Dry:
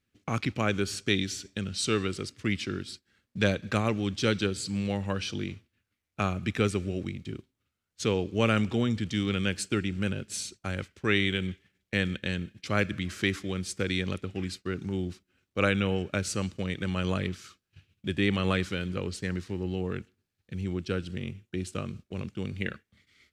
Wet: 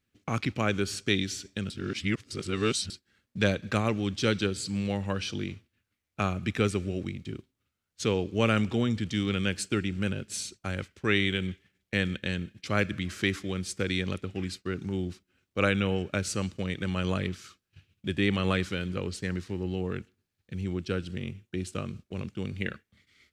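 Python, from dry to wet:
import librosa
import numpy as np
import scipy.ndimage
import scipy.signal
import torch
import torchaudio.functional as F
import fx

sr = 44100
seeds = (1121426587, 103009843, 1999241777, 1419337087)

y = fx.edit(x, sr, fx.reverse_span(start_s=1.7, length_s=1.2), tone=tone)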